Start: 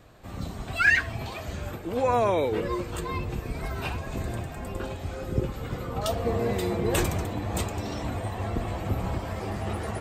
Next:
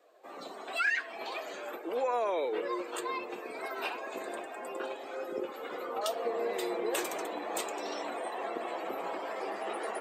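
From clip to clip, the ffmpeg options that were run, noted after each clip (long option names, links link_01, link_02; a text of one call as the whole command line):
ffmpeg -i in.wav -af "highpass=frequency=360:width=0.5412,highpass=frequency=360:width=1.3066,afftdn=noise_reduction=12:noise_floor=-50,acompressor=threshold=-31dB:ratio=2.5" out.wav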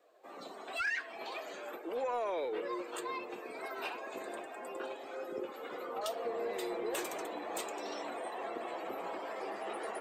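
ffmpeg -i in.wav -af "lowshelf=frequency=79:gain=11.5,asoftclip=type=tanh:threshold=-23.5dB,volume=-3.5dB" out.wav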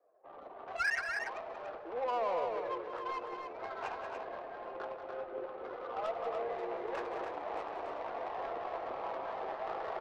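ffmpeg -i in.wav -filter_complex "[0:a]acrossover=split=500 2700:gain=0.141 1 0.224[link_01][link_02][link_03];[link_01][link_02][link_03]amix=inputs=3:normalize=0,adynamicsmooth=sensitivity=6:basefreq=670,aecho=1:1:183.7|288.6:0.355|0.501,volume=4dB" out.wav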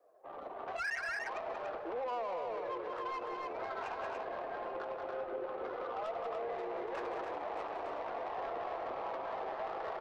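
ffmpeg -i in.wav -af "alimiter=level_in=12dB:limit=-24dB:level=0:latency=1:release=83,volume=-12dB,volume=4.5dB" out.wav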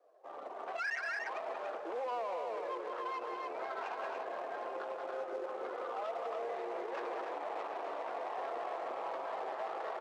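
ffmpeg -i in.wav -filter_complex "[0:a]asplit=2[link_01][link_02];[link_02]acrusher=bits=2:mode=log:mix=0:aa=0.000001,volume=-11.5dB[link_03];[link_01][link_03]amix=inputs=2:normalize=0,highpass=290,lowpass=6100,volume=-2dB" out.wav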